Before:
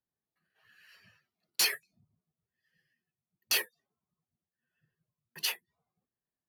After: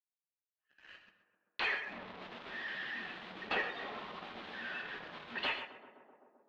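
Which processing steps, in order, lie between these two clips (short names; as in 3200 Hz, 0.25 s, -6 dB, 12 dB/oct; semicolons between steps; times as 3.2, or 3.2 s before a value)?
1.73–5.47 delta modulation 64 kbps, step -44.5 dBFS; treble ducked by the level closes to 2300 Hz, closed at -34 dBFS; elliptic band-pass 200–3700 Hz; expander -58 dBFS; low shelf 450 Hz -10 dB; compressor 3:1, threshold -42 dBFS, peak gain reduction 7.5 dB; sample leveller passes 3; air absorption 250 m; tape echo 0.13 s, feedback 88%, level -10 dB, low-pass 1400 Hz; non-linear reverb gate 0.16 s flat, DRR 6 dB; gain +2.5 dB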